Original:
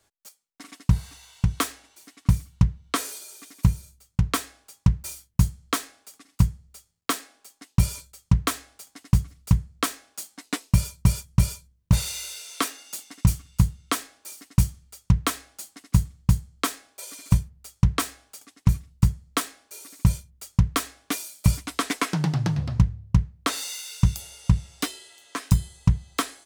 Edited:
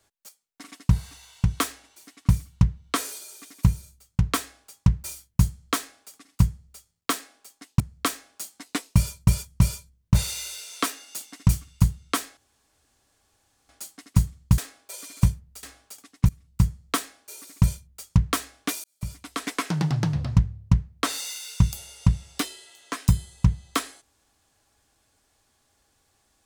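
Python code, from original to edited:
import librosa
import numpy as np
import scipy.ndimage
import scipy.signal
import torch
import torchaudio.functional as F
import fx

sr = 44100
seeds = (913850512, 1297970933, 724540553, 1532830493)

y = fx.edit(x, sr, fx.cut(start_s=7.8, length_s=1.78),
    fx.room_tone_fill(start_s=14.15, length_s=1.32),
    fx.cut(start_s=16.36, length_s=0.31),
    fx.cut(start_s=17.72, length_s=0.34),
    fx.fade_in_from(start_s=18.72, length_s=0.36, floor_db=-21.0),
    fx.fade_in_span(start_s=21.27, length_s=1.0), tone=tone)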